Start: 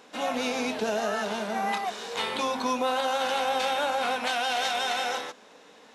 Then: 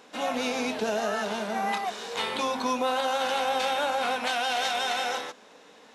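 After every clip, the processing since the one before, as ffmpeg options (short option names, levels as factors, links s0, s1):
-af anull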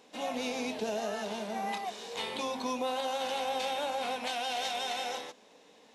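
-af "equalizer=f=1400:t=o:w=0.68:g=-8.5,volume=0.562"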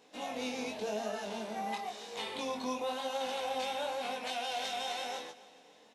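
-af "flanger=delay=18.5:depth=5:speed=0.95,aecho=1:1:281|562|843|1124:0.106|0.0519|0.0254|0.0125"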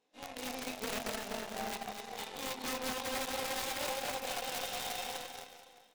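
-af "aeval=exprs='(mod(29.9*val(0)+1,2)-1)/29.9':c=same,aecho=1:1:250|475|677.5|859.8|1024:0.631|0.398|0.251|0.158|0.1,aeval=exprs='0.0708*(cos(1*acos(clip(val(0)/0.0708,-1,1)))-cos(1*PI/2))+0.0158*(cos(2*acos(clip(val(0)/0.0708,-1,1)))-cos(2*PI/2))+0.000398*(cos(3*acos(clip(val(0)/0.0708,-1,1)))-cos(3*PI/2))+0.00794*(cos(4*acos(clip(val(0)/0.0708,-1,1)))-cos(4*PI/2))+0.00794*(cos(7*acos(clip(val(0)/0.0708,-1,1)))-cos(7*PI/2))':c=same,volume=0.75"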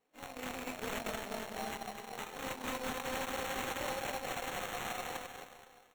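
-af "acrusher=samples=9:mix=1:aa=0.000001,volume=0.891"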